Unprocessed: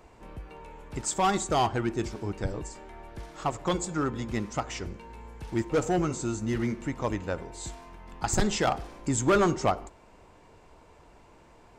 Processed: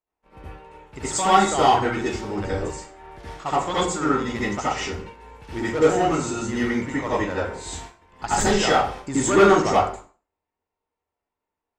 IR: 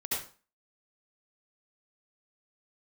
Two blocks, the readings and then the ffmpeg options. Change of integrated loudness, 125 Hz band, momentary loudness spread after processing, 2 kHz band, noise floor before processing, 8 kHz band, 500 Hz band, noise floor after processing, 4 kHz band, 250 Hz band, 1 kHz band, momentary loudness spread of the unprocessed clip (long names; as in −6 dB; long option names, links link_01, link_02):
+7.5 dB, +1.5 dB, 18 LU, +9.5 dB, −56 dBFS, +5.5 dB, +8.0 dB, below −85 dBFS, +8.5 dB, +5.5 dB, +9.5 dB, 19 LU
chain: -filter_complex "[0:a]agate=range=-38dB:threshold=-43dB:ratio=16:detection=peak,asplit=2[link_01][link_02];[link_02]highpass=frequency=720:poles=1,volume=5dB,asoftclip=type=tanh:threshold=-15dB[link_03];[link_01][link_03]amix=inputs=2:normalize=0,lowpass=frequency=4600:poles=1,volume=-6dB[link_04];[1:a]atrim=start_sample=2205[link_05];[link_04][link_05]afir=irnorm=-1:irlink=0,volume=4dB"